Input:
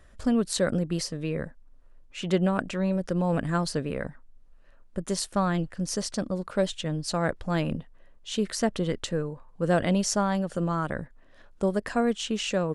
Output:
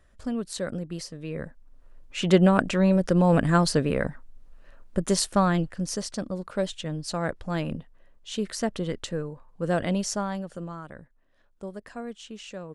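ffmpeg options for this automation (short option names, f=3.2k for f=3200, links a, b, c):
-af "volume=6dB,afade=t=in:st=1.22:d=0.97:silence=0.251189,afade=t=out:st=5.03:d=1.02:silence=0.398107,afade=t=out:st=9.96:d=0.87:silence=0.316228"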